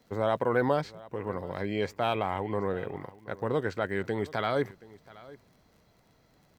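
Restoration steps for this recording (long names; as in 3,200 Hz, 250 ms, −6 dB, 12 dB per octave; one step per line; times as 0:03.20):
click removal
echo removal 726 ms −20.5 dB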